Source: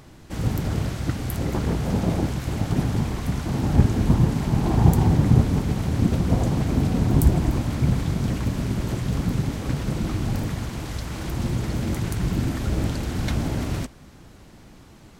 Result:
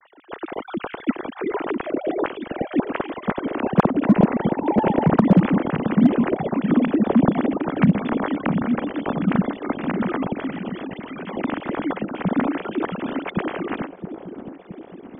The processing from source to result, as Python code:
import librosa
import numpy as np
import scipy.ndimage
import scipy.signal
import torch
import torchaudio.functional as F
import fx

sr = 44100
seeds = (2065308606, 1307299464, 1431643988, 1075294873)

y = fx.sine_speech(x, sr)
y = fx.echo_wet_lowpass(y, sr, ms=667, feedback_pct=59, hz=590.0, wet_db=-8.0)
y = np.clip(10.0 ** (7.0 / 20.0) * y, -1.0, 1.0) / 10.0 ** (7.0 / 20.0)